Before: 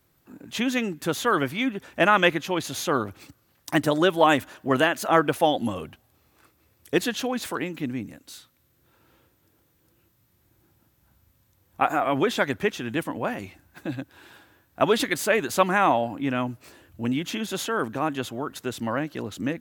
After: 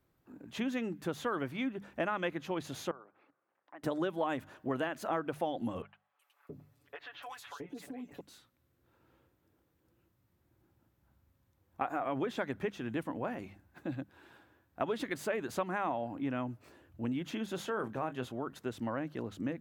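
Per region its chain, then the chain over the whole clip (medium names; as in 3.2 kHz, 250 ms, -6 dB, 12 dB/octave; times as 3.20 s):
2.91–3.83 s: compression 2:1, threshold -47 dBFS + band-pass 550–2100 Hz + distance through air 210 m
5.82–8.21 s: comb 7 ms, depth 77% + three bands offset in time mids, highs, lows 370/670 ms, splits 690/3300 Hz + compression 10:1, threshold -33 dBFS
17.55–18.32 s: band-stop 290 Hz, Q 7.9 + doubling 24 ms -11 dB
whole clip: treble shelf 2.5 kHz -11 dB; hum notches 50/100/150/200 Hz; compression 4:1, threshold -25 dBFS; trim -6 dB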